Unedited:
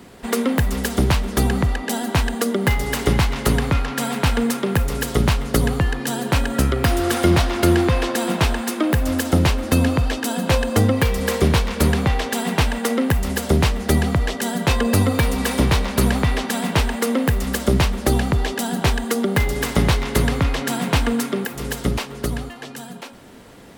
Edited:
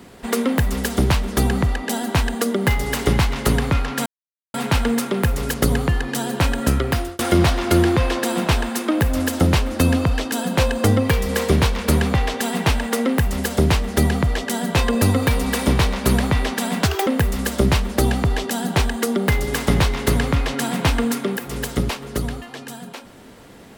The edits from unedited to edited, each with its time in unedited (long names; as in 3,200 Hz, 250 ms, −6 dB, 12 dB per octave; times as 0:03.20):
0:04.06: splice in silence 0.48 s
0:05.06–0:05.46: remove
0:06.63–0:07.11: fade out equal-power
0:16.75–0:17.15: play speed 168%